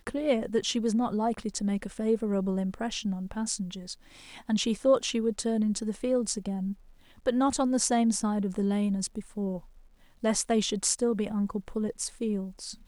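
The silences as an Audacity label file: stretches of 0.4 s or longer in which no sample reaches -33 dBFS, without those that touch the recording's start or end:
3.930000	4.490000	silence
6.730000	7.260000	silence
9.580000	10.240000	silence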